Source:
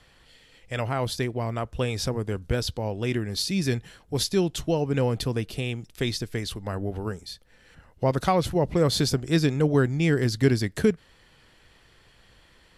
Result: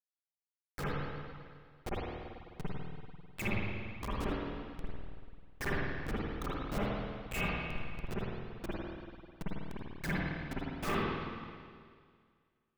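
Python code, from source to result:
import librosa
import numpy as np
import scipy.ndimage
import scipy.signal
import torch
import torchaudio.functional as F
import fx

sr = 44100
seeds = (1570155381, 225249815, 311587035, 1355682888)

y = fx.partial_stretch(x, sr, pct=82)
y = fx.env_lowpass(y, sr, base_hz=1000.0, full_db=-18.5)
y = fx.highpass(y, sr, hz=240.0, slope=6)
y = fx.rider(y, sr, range_db=4, speed_s=0.5)
y = fx.gate_flip(y, sr, shuts_db=-25.0, range_db=-41)
y = fx.dispersion(y, sr, late='lows', ms=107.0, hz=1700.0)
y = fx.step_gate(y, sr, bpm=190, pattern='.x.xxx.x..', floor_db=-12.0, edge_ms=4.5)
y = fx.schmitt(y, sr, flips_db=-50.5)
y = y + 10.0 ** (-16.0 / 20.0) * np.pad(y, (int(80 * sr / 1000.0), 0))[:len(y)]
y = fx.rev_spring(y, sr, rt60_s=2.0, pass_ms=(49, 54), chirp_ms=75, drr_db=-9.0)
y = F.gain(torch.from_numpy(y), 16.0).numpy()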